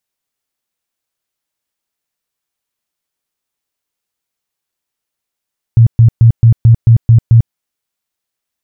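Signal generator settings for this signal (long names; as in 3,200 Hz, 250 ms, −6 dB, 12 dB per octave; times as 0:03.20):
tone bursts 115 Hz, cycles 11, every 0.22 s, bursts 8, −1.5 dBFS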